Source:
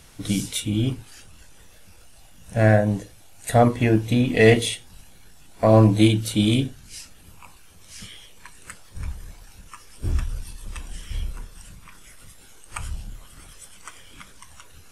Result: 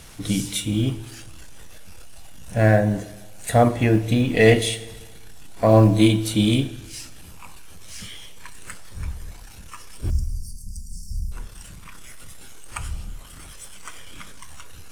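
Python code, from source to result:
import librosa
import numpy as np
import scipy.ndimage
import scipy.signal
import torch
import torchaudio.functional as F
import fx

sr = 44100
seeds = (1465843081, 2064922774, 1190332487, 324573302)

y = fx.law_mismatch(x, sr, coded='mu')
y = fx.brickwall_bandstop(y, sr, low_hz=250.0, high_hz=4400.0, at=(10.1, 11.32))
y = fx.rev_schroeder(y, sr, rt60_s=1.3, comb_ms=27, drr_db=14.5)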